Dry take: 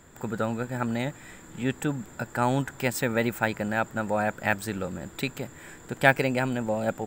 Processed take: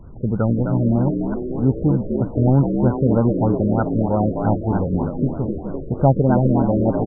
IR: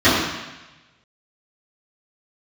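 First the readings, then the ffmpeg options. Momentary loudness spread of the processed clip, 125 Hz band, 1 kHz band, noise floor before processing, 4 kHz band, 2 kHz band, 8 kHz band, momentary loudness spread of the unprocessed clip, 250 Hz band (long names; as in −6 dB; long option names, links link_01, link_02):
7 LU, +14.5 dB, +4.0 dB, −49 dBFS, below −40 dB, −13.5 dB, below −40 dB, 11 LU, +12.0 dB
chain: -filter_complex "[0:a]aemphasis=mode=reproduction:type=riaa,asplit=9[link_01][link_02][link_03][link_04][link_05][link_06][link_07][link_08][link_09];[link_02]adelay=255,afreqshift=69,volume=-6dB[link_10];[link_03]adelay=510,afreqshift=138,volume=-10.4dB[link_11];[link_04]adelay=765,afreqshift=207,volume=-14.9dB[link_12];[link_05]adelay=1020,afreqshift=276,volume=-19.3dB[link_13];[link_06]adelay=1275,afreqshift=345,volume=-23.7dB[link_14];[link_07]adelay=1530,afreqshift=414,volume=-28.2dB[link_15];[link_08]adelay=1785,afreqshift=483,volume=-32.6dB[link_16];[link_09]adelay=2040,afreqshift=552,volume=-37.1dB[link_17];[link_01][link_10][link_11][link_12][link_13][link_14][link_15][link_16][link_17]amix=inputs=9:normalize=0,afftfilt=real='re*lt(b*sr/1024,600*pow(1600/600,0.5+0.5*sin(2*PI*3.2*pts/sr)))':imag='im*lt(b*sr/1024,600*pow(1600/600,0.5+0.5*sin(2*PI*3.2*pts/sr)))':win_size=1024:overlap=0.75,volume=3dB"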